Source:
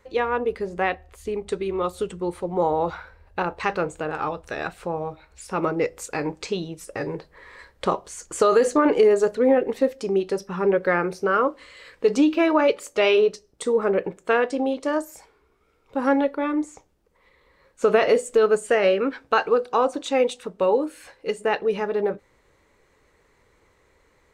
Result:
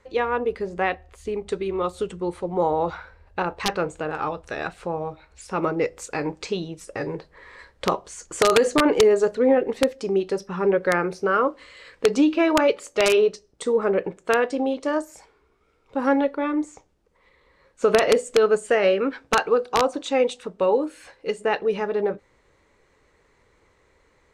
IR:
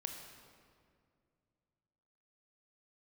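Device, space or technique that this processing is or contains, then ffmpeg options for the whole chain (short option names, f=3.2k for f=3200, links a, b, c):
overflowing digital effects unit: -af "aeval=exprs='(mod(2.82*val(0)+1,2)-1)/2.82':c=same,lowpass=9.1k"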